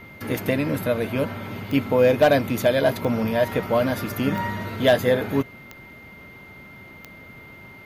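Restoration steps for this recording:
clipped peaks rebuilt −8 dBFS
click removal
notch filter 2,100 Hz, Q 30

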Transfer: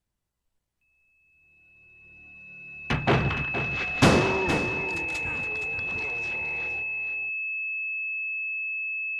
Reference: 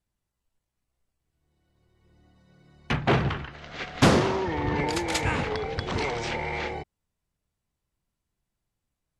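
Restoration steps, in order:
notch filter 2,600 Hz, Q 30
echo removal 467 ms −10 dB
level 0 dB, from 0:04.58 +11.5 dB

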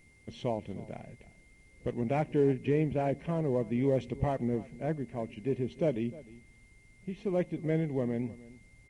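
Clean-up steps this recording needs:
notch filter 2,100 Hz, Q 30
echo removal 306 ms −19.5 dB

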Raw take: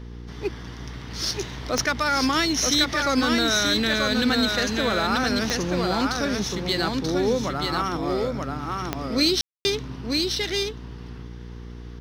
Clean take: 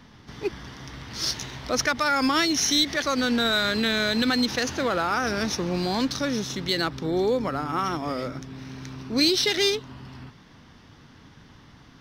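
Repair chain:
click removal
hum removal 59.4 Hz, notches 8
ambience match 0:09.41–0:09.65
echo removal 934 ms −3.5 dB

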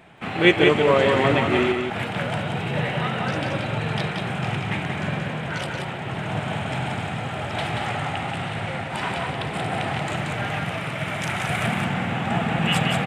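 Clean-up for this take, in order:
echo removal 180 ms −4.5 dB

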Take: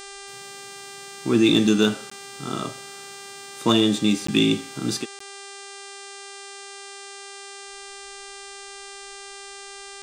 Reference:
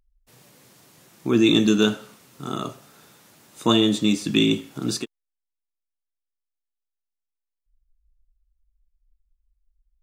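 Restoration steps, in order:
clipped peaks rebuilt −8 dBFS
hum removal 397 Hz, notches 24
repair the gap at 0:02.10/0:04.27/0:05.19, 14 ms

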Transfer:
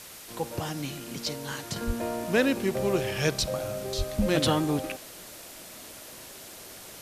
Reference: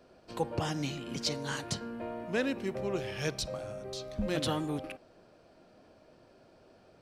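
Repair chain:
high-pass at the plosives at 0:01.86/0:03.97
noise reduction from a noise print 15 dB
level 0 dB, from 0:01.76 −7.5 dB

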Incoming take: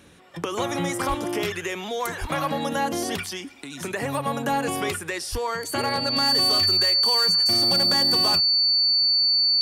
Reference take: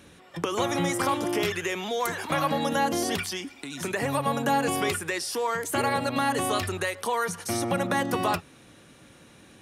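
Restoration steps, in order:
clipped peaks rebuilt −16.5 dBFS
notch filter 4,500 Hz, Q 30
0:01.08–0:01.20: high-pass filter 140 Hz 24 dB per octave
0:02.20–0:02.32: high-pass filter 140 Hz 24 dB per octave
0:05.31–0:05.43: high-pass filter 140 Hz 24 dB per octave

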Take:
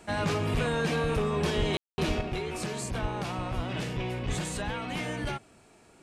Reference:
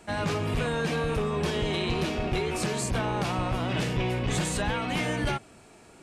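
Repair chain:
high-pass at the plosives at 0:01.56/0:02.07/0:03.01/0:03.55/0:04.27
ambience match 0:01.77–0:01.98
level correction +5 dB, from 0:02.21

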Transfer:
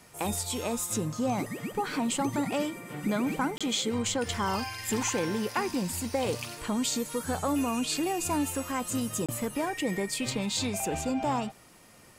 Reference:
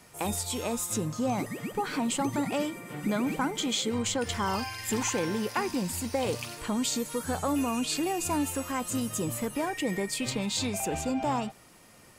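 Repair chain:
repair the gap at 0:03.58/0:09.26, 26 ms

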